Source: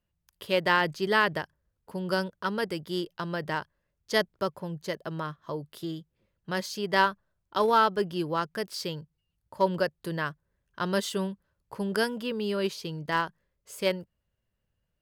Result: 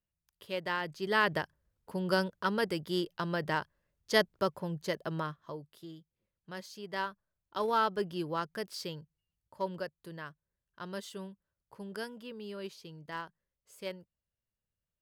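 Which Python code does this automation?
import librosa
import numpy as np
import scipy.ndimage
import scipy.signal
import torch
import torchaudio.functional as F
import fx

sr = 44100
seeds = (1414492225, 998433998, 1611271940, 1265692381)

y = fx.gain(x, sr, db=fx.line((0.84, -10.5), (1.36, -1.0), (5.19, -1.0), (5.77, -12.5), (7.02, -12.5), (7.94, -5.5), (8.75, -5.5), (10.12, -13.0)))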